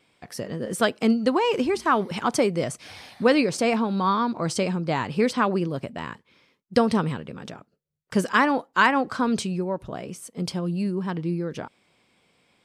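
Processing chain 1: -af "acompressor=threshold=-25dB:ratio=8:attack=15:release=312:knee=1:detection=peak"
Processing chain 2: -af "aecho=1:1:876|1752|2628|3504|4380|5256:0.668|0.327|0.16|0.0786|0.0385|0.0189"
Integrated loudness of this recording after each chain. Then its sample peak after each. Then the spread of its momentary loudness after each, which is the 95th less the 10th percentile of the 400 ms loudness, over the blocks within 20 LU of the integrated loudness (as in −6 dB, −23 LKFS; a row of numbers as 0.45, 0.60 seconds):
−30.5, −23.0 LKFS; −10.0, −6.0 dBFS; 8, 10 LU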